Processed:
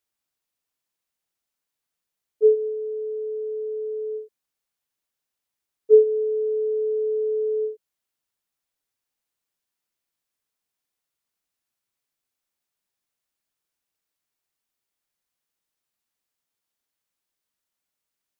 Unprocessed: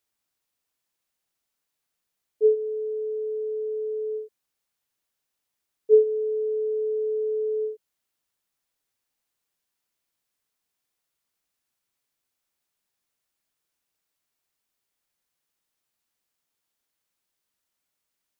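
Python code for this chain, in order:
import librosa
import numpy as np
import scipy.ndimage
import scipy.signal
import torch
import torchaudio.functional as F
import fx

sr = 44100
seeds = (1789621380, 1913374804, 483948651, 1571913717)

y = fx.dynamic_eq(x, sr, hz=440.0, q=2.4, threshold_db=-31.0, ratio=4.0, max_db=6)
y = y * librosa.db_to_amplitude(-3.0)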